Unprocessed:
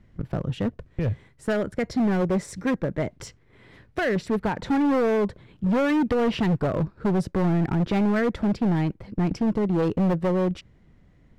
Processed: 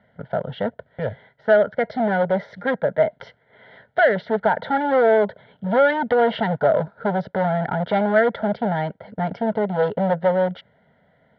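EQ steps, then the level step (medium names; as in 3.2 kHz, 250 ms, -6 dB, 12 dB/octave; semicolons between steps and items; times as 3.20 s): cabinet simulation 260–3800 Hz, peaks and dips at 420 Hz +5 dB, 640 Hz +7 dB, 950 Hz +6 dB, 1.4 kHz +10 dB, 2.2 kHz +6 dB, 3.2 kHz +7 dB; tilt shelf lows +4 dB, about 1.1 kHz; static phaser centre 1.7 kHz, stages 8; +4.0 dB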